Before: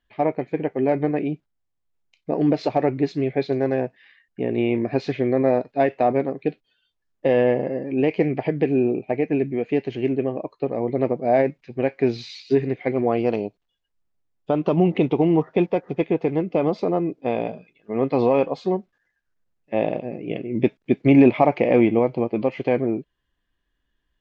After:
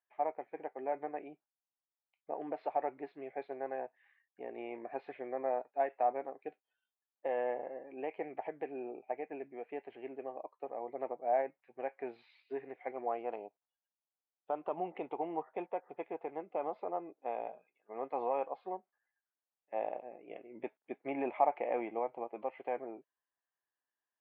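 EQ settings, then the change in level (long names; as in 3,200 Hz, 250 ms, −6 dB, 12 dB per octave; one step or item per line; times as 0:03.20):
four-pole ladder band-pass 900 Hz, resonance 65%
high-frequency loss of the air 310 metres
parametric band 850 Hz −10.5 dB 1.2 octaves
+5.5 dB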